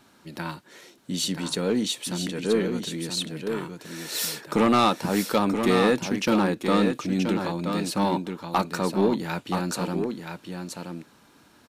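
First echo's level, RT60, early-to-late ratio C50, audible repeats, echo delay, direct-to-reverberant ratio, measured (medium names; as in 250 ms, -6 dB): -6.5 dB, no reverb, no reverb, 1, 977 ms, no reverb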